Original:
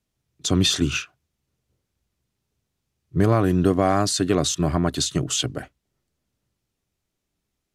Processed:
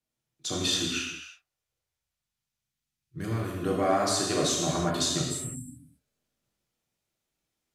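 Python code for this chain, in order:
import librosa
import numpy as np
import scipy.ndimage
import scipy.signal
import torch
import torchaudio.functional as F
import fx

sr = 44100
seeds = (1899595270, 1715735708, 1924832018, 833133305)

y = fx.low_shelf(x, sr, hz=230.0, db=-10.0)
y = fx.rider(y, sr, range_db=10, speed_s=2.0)
y = fx.peak_eq(y, sr, hz=fx.line((0.83, 140.0), (3.56, 800.0)), db=-13.0, octaves=1.9, at=(0.83, 3.56), fade=0.02)
y = fx.spec_repair(y, sr, seeds[0], start_s=5.24, length_s=0.84, low_hz=300.0, high_hz=7400.0, source='after')
y = fx.rev_gated(y, sr, seeds[1], gate_ms=380, shape='falling', drr_db=-3.5)
y = y * librosa.db_to_amplitude(-7.0)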